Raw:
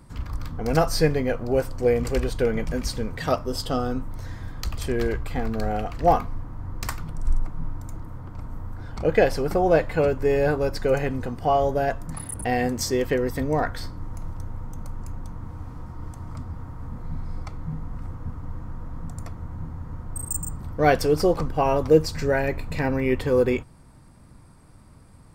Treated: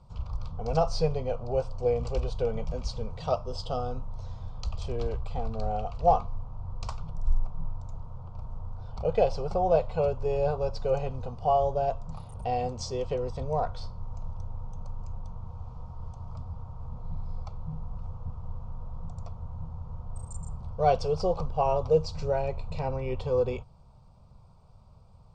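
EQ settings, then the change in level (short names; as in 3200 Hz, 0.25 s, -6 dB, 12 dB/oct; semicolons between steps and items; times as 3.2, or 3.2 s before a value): Bessel low-pass 4200 Hz, order 8; fixed phaser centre 720 Hz, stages 4; notch 2100 Hz, Q 11; -2.5 dB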